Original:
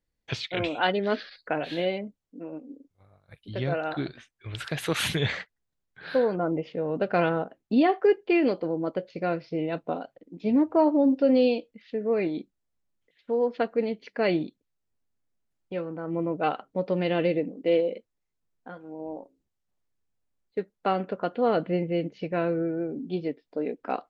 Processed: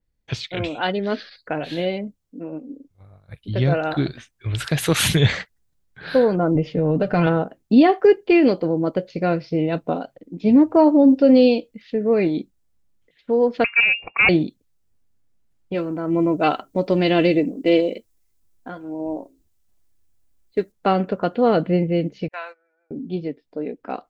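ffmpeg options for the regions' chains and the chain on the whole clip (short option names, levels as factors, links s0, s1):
-filter_complex "[0:a]asettb=1/sr,asplit=3[s0][s1][s2];[s0]atrim=end=6.554[s3];[s1]atrim=start=6.55:end=7.27,asetpts=PTS-STARTPTS,afade=t=in:d=0.004:c=qsin,afade=t=out:st=0.716:d=0.004:c=qsin,aecho=1:1:6.7:0.49,atrim=end_sample=31752,acompressor=threshold=0.0501:ratio=2:attack=3.2:release=140:knee=1:detection=peak,lowshelf=f=150:g=8.5[s4];[s2]atrim=start=7.266[s5];[s3][s4]acrossfade=d=0.004:c1=hsin:c2=qsin[s6];[s6][s5]acrossfade=d=0.004:c1=qsin:c2=hsin,asettb=1/sr,asplit=3[s7][s8][s9];[s7]atrim=end=13.644[s10];[s8]atrim=start=13.64:end=14.29,asetpts=PTS-STARTPTS,afade=t=in:d=0.004:c=qsin,afade=t=out:st=0.646:d=0.004:c=qsin,acontrast=85,aeval=exprs='(tanh(7.08*val(0)+0.5)-tanh(0.5))/7.08':c=same,lowpass=f=2400:t=q:w=0.5098,lowpass=f=2400:t=q:w=0.6013,lowpass=f=2400:t=q:w=0.9,lowpass=f=2400:t=q:w=2.563,afreqshift=-2800[s11];[s9]atrim=start=14.286[s12];[s10][s11]acrossfade=d=0.004:c1=hsin:c2=qsin[s13];[s13][s12]acrossfade=d=0.004:c1=qsin:c2=hsin,asettb=1/sr,asplit=3[s14][s15][s16];[s14]atrim=end=15.744[s17];[s15]atrim=start=15.74:end=20.72,asetpts=PTS-STARTPTS,afade=t=in:d=0.004:c=qsin,afade=t=out:st=4.976:d=0.004:c=qsin,highshelf=f=4900:g=10,aecho=1:1:3:0.36,atrim=end_sample=219618[s18];[s16]atrim=start=20.716[s19];[s17][s18]acrossfade=d=0.004:c1=hsin:c2=qsin[s20];[s20][s19]acrossfade=d=0.004:c1=qsin:c2=hsin,asettb=1/sr,asplit=3[s21][s22][s23];[s21]atrim=end=22.284[s24];[s22]atrim=start=22.28:end=22.91,asetpts=PTS-STARTPTS,afade=t=in:d=0.004:c=qsin,afade=t=out:st=0.626:d=0.004:c=qsin,highpass=f=860:w=0.5412,highpass=f=860:w=1.3066,agate=range=0.0794:threshold=0.00631:ratio=16:release=100:detection=peak[s25];[s23]atrim=start=22.906[s26];[s24][s25]acrossfade=d=0.004:c1=hsin:c2=qsin[s27];[s27][s26]acrossfade=d=0.004:c1=qsin:c2=hsin,lowshelf=f=200:g=9.5,dynaudnorm=f=360:g=13:m=2,adynamicequalizer=threshold=0.00708:dfrequency=4500:dqfactor=0.7:tfrequency=4500:tqfactor=0.7:attack=5:release=100:ratio=0.375:range=3.5:mode=boostabove:tftype=highshelf"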